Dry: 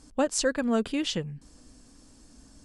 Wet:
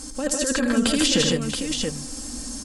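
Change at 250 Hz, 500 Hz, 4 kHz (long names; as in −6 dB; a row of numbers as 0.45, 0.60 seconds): +7.0, +3.5, +11.5 decibels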